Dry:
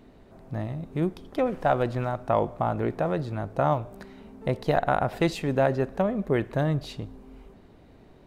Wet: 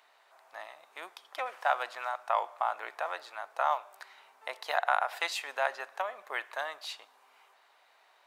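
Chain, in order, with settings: HPF 860 Hz 24 dB/oct; gain +1.5 dB

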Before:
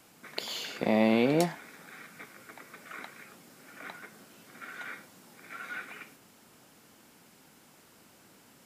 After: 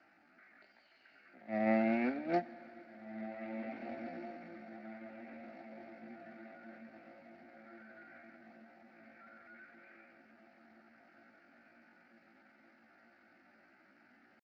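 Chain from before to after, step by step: zero-crossing step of -27.5 dBFS; HPF 81 Hz 6 dB/oct; gate -20 dBFS, range -29 dB; in parallel at -10 dB: hard clip -24.5 dBFS, distortion -15 dB; on the sum: dynamic EQ 740 Hz, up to +3 dB, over -46 dBFS, Q 2.8; on a send: diffused feedback echo 1.117 s, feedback 52%, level -10 dB; on the sum: tempo 0.6×; steep low-pass 4600 Hz 48 dB/oct; bell 1500 Hz +5 dB 1.6 oct; fixed phaser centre 690 Hz, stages 8; Schroeder reverb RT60 3.5 s, DRR 17 dB; gain -3.5 dB; Speex 34 kbps 16000 Hz

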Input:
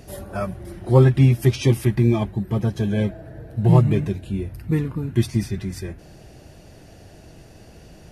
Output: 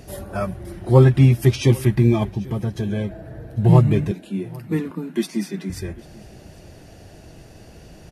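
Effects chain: 2.34–3.11 compressor, threshold -22 dBFS, peak gain reduction 5.5 dB; 4.11–5.7 Chebyshev high-pass 160 Hz, order 8; echo 0.796 s -23 dB; gain +1.5 dB

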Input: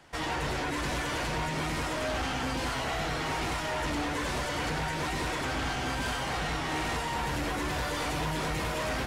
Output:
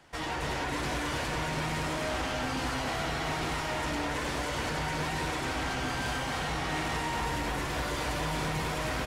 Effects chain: echo 0.282 s -4 dB; gain -2 dB

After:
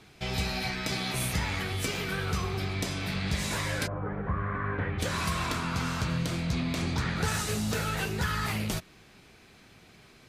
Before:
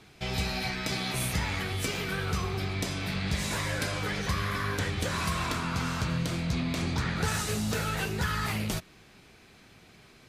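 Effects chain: 3.86–4.98 LPF 1100 Hz -> 2300 Hz 24 dB/oct

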